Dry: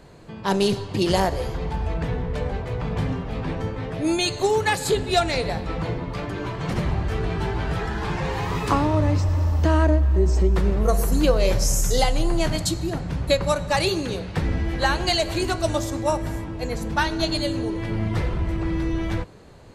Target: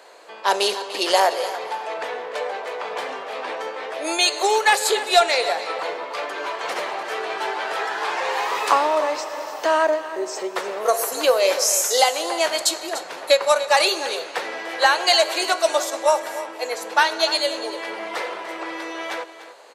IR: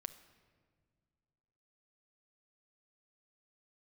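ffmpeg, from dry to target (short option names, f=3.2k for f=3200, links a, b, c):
-filter_complex "[0:a]highpass=f=510:w=0.5412,highpass=f=510:w=1.3066,acontrast=66,asplit=2[a][b];[b]aecho=0:1:295:0.2[c];[a][c]amix=inputs=2:normalize=0"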